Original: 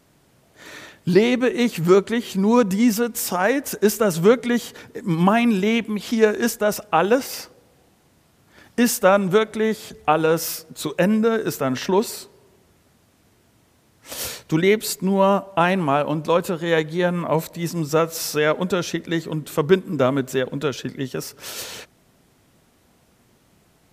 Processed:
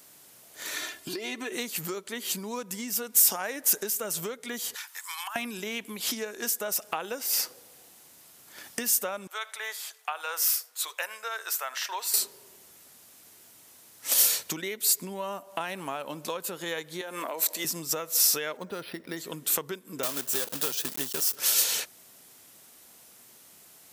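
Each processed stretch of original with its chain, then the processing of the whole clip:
0.76–1.52 high shelf 10000 Hz -5 dB + comb 2.9 ms, depth 72% + compressor 3:1, threshold -26 dBFS
4.75–5.36 steep high-pass 900 Hz + compressor 8:1, threshold -35 dBFS
9.27–12.14 Bessel high-pass 1200 Hz, order 4 + high shelf 2200 Hz -11 dB + echo 80 ms -23 dB
17.01–17.65 HPF 260 Hz 24 dB/oct + compressor, threshold -23 dBFS
18.57–19.17 air absorption 270 m + decimation joined by straight lines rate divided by 6×
20.03–21.36 block floating point 3-bit + bell 2100 Hz -6 dB 0.28 oct
whole clip: compressor 10:1, threshold -29 dBFS; RIAA curve recording

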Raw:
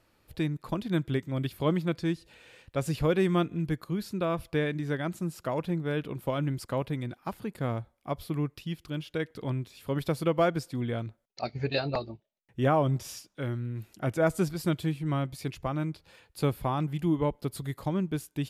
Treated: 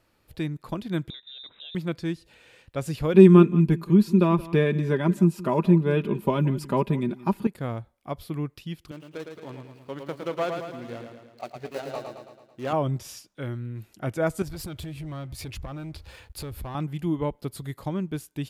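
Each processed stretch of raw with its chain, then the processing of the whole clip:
1.1–1.75 compressor 4:1, threshold -43 dBFS + inverted band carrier 3800 Hz
3.14–7.47 comb 5 ms, depth 58% + small resonant body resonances 210/330/930/2500 Hz, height 12 dB, ringing for 30 ms + echo 0.175 s -18.5 dB
8.91–12.73 median filter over 25 samples + HPF 540 Hz 6 dB/oct + feedback echo 0.11 s, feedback 55%, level -5.5 dB
14.42–16.75 resonant low shelf 110 Hz +12.5 dB, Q 1.5 + compressor 5:1, threshold -38 dBFS + sample leveller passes 2
whole clip: dry

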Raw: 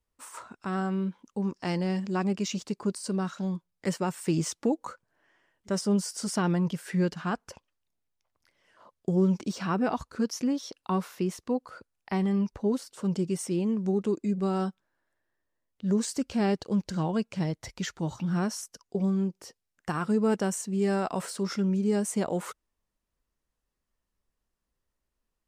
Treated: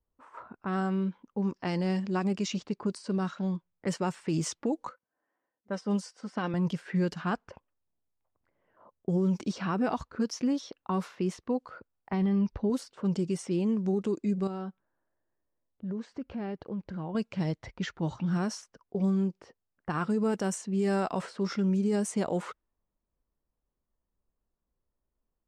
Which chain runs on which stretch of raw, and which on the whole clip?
4.89–6.54 HPF 270 Hz 6 dB/oct + comb 3.9 ms, depth 40% + upward expander, over -43 dBFS
12.13–12.7 polynomial smoothing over 15 samples + low shelf 130 Hz +9 dB
14.47–17.15 compressor 2.5:1, threshold -36 dBFS + air absorption 54 m
whole clip: low-pass opened by the level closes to 1000 Hz, open at -22.5 dBFS; limiter -20.5 dBFS

